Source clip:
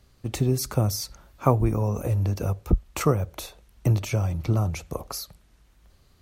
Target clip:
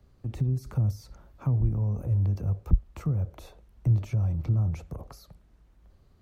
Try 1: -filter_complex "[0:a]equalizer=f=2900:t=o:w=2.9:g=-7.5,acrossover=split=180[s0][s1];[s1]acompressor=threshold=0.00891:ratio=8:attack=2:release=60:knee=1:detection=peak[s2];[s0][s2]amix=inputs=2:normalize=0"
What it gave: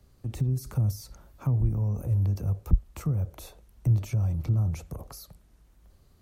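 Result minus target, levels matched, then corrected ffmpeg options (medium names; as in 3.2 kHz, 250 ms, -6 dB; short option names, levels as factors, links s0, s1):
8 kHz band +9.0 dB
-filter_complex "[0:a]equalizer=f=2900:t=o:w=2.9:g=-7.5,acrossover=split=180[s0][s1];[s1]acompressor=threshold=0.00891:ratio=8:attack=2:release=60:knee=1:detection=peak,equalizer=f=12000:t=o:w=1.8:g=-12.5[s2];[s0][s2]amix=inputs=2:normalize=0"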